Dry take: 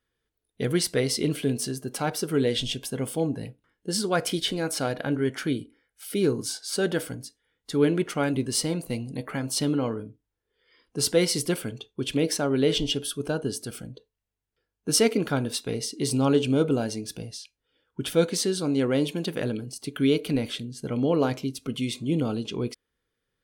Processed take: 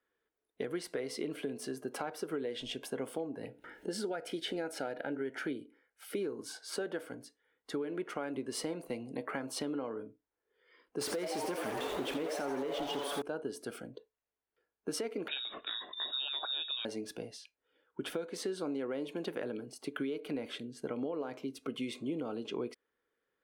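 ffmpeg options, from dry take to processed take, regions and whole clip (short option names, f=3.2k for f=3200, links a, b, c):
-filter_complex "[0:a]asettb=1/sr,asplit=3[a][b][c];[a]atrim=end=3.444[d];[b]atrim=start=3.44:end=5.6,asetpts=PTS-STARTPTS,afade=t=in:d=0.004:c=qsin,afade=t=out:st=2.156:d=0.004:c=qsin,acompressor=mode=upward:threshold=-29dB:ratio=2.5:attack=3.2:release=140:knee=2.83:detection=peak,asuperstop=centerf=1100:order=8:qfactor=4.5[e];[c]atrim=start=5.596[f];[d][e]acrossfade=d=0.004:c1=hsin:c2=qsin[g];[g][f]acrossfade=d=0.004:c1=qsin:c2=hsin,asettb=1/sr,asplit=3[h][i][j];[h]atrim=end=11.014[k];[i]atrim=start=11.01:end=13.22,asetpts=PTS-STARTPTS,afade=t=in:d=0.004:c=qsin,afade=t=out:st=2.206:d=0.004:c=qsin,aeval=exprs='val(0)+0.5*0.0631*sgn(val(0))':c=same,asplit=9[l][m][n][o][p][q][r][s][t];[m]adelay=85,afreqshift=140,volume=-8dB[u];[n]adelay=170,afreqshift=280,volume=-12.2dB[v];[o]adelay=255,afreqshift=420,volume=-16.3dB[w];[p]adelay=340,afreqshift=560,volume=-20.5dB[x];[q]adelay=425,afreqshift=700,volume=-24.6dB[y];[r]adelay=510,afreqshift=840,volume=-28.8dB[z];[s]adelay=595,afreqshift=980,volume=-32.9dB[aa];[t]adelay=680,afreqshift=1120,volume=-37.1dB[ab];[l][u][v][w][x][y][z][aa][ab]amix=inputs=9:normalize=0,atrim=end_sample=97461[ac];[j]atrim=start=13.216[ad];[k][ac]acrossfade=d=0.004:c1=hsin:c2=qsin[ae];[ae][ad]acrossfade=d=0.004:c1=qsin:c2=hsin,asettb=1/sr,asplit=3[af][ag][ah];[af]atrim=end=15.284[ai];[ag]atrim=start=15.28:end=16.85,asetpts=PTS-STARTPTS,afade=t=in:d=0.004:c=qsin,afade=t=out:st=1.566:d=0.004:c=qsin,aecho=1:1:0.9:0.42,atrim=end_sample=69237,acompressor=mode=upward:threshold=-25dB:ratio=2.5:attack=3.2:release=140:knee=2.83:detection=peak,lowpass=f=3.3k:t=q:w=0.5098,lowpass=f=3.3k:t=q:w=0.6013,lowpass=f=3.3k:t=q:w=0.9,lowpass=f=3.3k:t=q:w=2.563,afreqshift=-3900[aj];[ah]atrim=start=16.846[ak];[ai][aj]acrossfade=d=0.004:c1=hsin:c2=qsin[al];[al][ak]acrossfade=d=0.004:c1=qsin:c2=hsin,acrossover=split=270 2300:gain=0.112 1 0.224[am][an][ao];[am][an][ao]amix=inputs=3:normalize=0,alimiter=limit=-22dB:level=0:latency=1:release=423,acompressor=threshold=-35dB:ratio=4,volume=1dB"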